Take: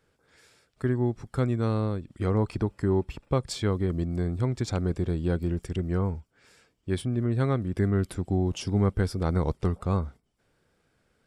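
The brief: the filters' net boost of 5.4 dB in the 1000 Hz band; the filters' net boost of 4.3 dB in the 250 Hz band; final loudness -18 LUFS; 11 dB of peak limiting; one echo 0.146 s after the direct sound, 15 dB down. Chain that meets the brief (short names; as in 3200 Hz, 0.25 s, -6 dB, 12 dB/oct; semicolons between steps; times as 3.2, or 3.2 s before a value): bell 250 Hz +5.5 dB; bell 1000 Hz +6.5 dB; limiter -19.5 dBFS; echo 0.146 s -15 dB; gain +11 dB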